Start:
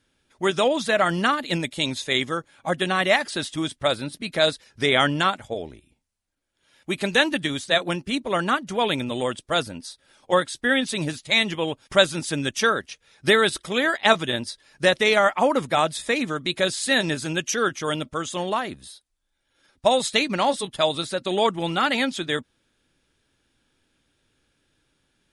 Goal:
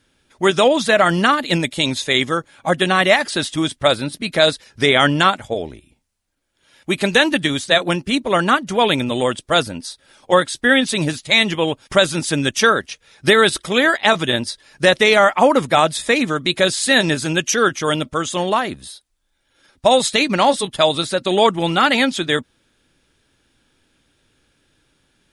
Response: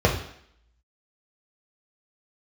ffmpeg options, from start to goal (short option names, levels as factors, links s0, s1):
-af "alimiter=level_in=2.51:limit=0.891:release=50:level=0:latency=1,volume=0.891"